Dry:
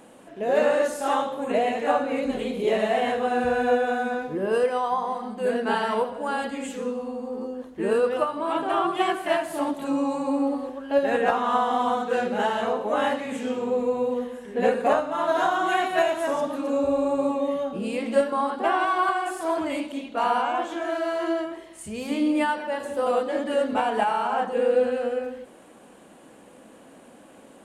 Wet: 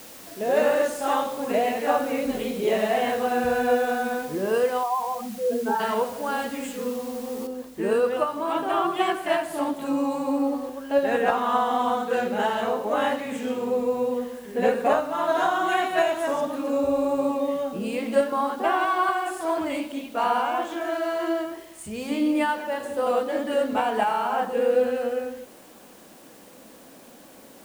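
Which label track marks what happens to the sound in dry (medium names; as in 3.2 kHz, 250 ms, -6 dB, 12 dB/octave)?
4.830000	5.800000	spectral contrast enhancement exponent 2.3
7.470000	7.470000	noise floor step -45 dB -54 dB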